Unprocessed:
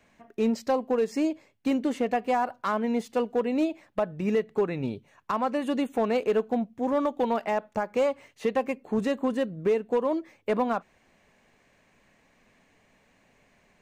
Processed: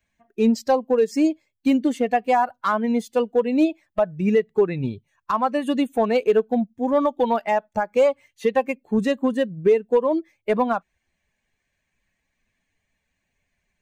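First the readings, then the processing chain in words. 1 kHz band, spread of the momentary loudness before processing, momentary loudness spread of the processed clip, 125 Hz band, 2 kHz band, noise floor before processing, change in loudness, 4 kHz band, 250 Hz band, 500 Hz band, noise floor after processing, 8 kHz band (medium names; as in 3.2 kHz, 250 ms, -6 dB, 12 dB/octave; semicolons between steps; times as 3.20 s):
+6.0 dB, 5 LU, 6 LU, +6.0 dB, +5.5 dB, -65 dBFS, +6.0 dB, +5.0 dB, +6.0 dB, +6.0 dB, -77 dBFS, no reading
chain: expander on every frequency bin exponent 1.5; trim +8.5 dB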